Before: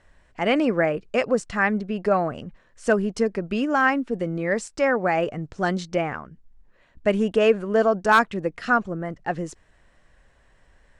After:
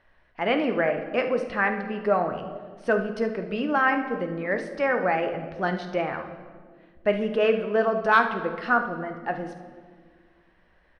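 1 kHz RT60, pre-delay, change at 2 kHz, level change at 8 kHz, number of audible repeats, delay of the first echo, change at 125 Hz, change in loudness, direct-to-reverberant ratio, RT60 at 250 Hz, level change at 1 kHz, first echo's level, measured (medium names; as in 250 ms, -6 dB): 1.5 s, 10 ms, -1.0 dB, under -15 dB, 1, 50 ms, -5.5 dB, -2.5 dB, 5.5 dB, 2.5 s, -1.0 dB, -13.5 dB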